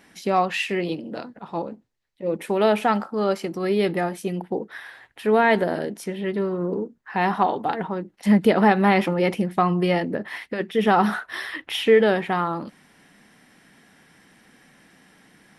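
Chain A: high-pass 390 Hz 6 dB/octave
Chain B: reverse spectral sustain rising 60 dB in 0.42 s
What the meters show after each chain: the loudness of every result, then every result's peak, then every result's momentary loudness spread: -25.0 LUFS, -21.5 LUFS; -5.5 dBFS, -3.5 dBFS; 14 LU, 14 LU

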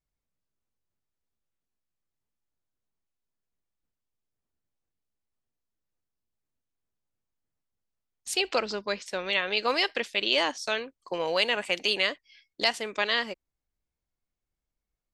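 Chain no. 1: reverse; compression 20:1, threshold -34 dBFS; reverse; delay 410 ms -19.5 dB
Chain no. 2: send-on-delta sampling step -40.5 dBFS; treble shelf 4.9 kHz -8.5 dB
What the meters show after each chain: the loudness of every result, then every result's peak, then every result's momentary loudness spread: -39.0 LUFS, -29.0 LUFS; -21.0 dBFS, -11.5 dBFS; 7 LU, 7 LU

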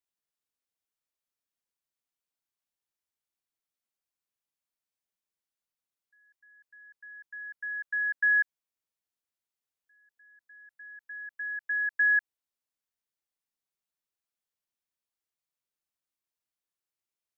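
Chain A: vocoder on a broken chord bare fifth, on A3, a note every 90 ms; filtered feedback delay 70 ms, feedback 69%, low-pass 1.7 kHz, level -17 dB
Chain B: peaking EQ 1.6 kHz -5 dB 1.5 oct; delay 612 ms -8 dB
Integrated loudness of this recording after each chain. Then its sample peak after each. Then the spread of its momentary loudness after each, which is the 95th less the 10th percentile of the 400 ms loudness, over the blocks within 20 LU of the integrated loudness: -28.5 LUFS, -33.0 LUFS; -16.5 dBFS, -24.0 dBFS; 18 LU, 20 LU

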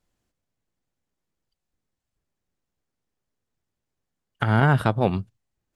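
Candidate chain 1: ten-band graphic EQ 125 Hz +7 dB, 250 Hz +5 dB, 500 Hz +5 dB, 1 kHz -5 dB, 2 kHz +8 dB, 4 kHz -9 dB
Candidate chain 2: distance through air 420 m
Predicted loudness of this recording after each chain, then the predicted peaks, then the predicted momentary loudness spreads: -16.5 LUFS, -23.0 LUFS; -1.5 dBFS, -7.0 dBFS; 11 LU, 10 LU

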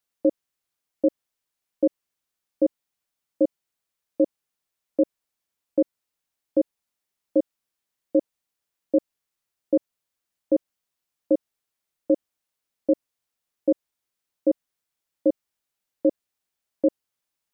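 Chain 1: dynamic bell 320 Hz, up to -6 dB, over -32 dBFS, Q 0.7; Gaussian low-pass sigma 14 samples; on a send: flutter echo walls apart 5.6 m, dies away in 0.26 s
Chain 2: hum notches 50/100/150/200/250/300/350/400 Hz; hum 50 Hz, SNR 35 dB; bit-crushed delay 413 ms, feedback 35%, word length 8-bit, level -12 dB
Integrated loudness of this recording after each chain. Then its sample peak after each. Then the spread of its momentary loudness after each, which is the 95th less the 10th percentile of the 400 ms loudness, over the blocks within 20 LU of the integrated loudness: -33.5 LUFS, -30.0 LUFS; -14.5 dBFS, -11.0 dBFS; 11 LU, 12 LU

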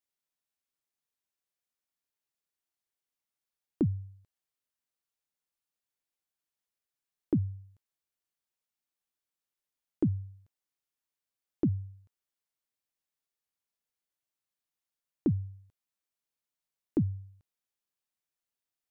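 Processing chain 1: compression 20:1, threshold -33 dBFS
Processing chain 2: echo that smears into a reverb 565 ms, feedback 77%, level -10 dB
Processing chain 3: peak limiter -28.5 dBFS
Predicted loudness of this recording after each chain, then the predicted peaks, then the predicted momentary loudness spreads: -42.5 LUFS, -38.5 LUFS, -39.0 LUFS; -20.5 dBFS, -18.5 dBFS, -28.5 dBFS; 15 LU, 19 LU, 12 LU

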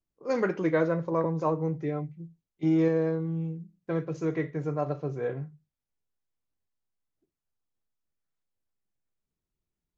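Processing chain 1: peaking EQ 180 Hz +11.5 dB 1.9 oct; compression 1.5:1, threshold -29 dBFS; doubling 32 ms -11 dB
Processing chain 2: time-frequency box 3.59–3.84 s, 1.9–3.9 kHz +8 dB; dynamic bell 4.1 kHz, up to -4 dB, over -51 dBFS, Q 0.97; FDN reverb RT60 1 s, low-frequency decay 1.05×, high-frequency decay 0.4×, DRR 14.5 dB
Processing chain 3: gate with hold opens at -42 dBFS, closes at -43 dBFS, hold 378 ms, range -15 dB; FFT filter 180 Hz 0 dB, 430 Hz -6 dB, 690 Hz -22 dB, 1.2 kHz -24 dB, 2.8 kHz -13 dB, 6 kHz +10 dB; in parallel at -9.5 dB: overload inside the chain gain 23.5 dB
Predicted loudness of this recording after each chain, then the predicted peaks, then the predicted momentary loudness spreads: -26.5 LUFS, -28.5 LUFS, -31.0 LUFS; -13.0 dBFS, -12.5 dBFS, -17.5 dBFS; 8 LU, 14 LU, 10 LU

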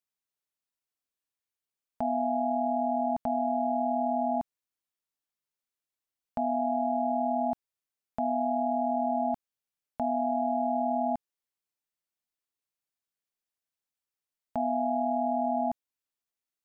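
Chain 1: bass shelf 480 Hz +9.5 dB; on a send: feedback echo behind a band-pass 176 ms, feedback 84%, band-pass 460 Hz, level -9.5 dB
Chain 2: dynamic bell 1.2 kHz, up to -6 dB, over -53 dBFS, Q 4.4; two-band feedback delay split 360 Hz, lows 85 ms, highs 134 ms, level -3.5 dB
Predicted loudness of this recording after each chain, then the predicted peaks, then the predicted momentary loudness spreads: -24.0 LUFS, -28.0 LUFS; -12.0 dBFS, -16.5 dBFS; 15 LU, 12 LU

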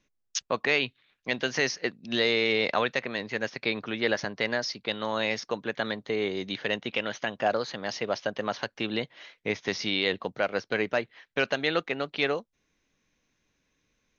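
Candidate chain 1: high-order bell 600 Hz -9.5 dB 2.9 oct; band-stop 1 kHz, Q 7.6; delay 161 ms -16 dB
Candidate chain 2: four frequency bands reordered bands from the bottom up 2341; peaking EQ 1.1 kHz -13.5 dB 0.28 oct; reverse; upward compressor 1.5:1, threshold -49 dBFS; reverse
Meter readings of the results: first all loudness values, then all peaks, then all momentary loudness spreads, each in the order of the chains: -32.0 LUFS, -27.5 LUFS; -11.5 dBFS, -10.5 dBFS; 9 LU, 7 LU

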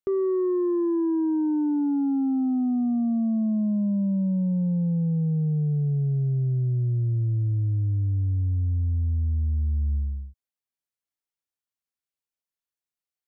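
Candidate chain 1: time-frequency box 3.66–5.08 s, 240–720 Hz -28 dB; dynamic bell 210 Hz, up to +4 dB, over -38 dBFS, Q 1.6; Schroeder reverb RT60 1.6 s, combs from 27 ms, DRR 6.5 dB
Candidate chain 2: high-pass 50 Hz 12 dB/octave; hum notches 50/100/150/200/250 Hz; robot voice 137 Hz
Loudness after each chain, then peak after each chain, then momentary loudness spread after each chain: -22.0 LUFS, -28.5 LUFS; -11.5 dBFS, -19.0 dBFS; 6 LU, 11 LU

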